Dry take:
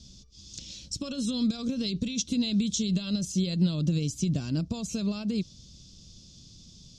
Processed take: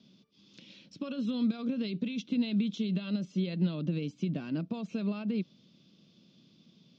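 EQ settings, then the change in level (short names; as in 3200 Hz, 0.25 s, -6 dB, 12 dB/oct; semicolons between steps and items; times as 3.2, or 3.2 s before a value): HPF 180 Hz 24 dB/oct; ladder low-pass 3100 Hz, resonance 25%; +4.5 dB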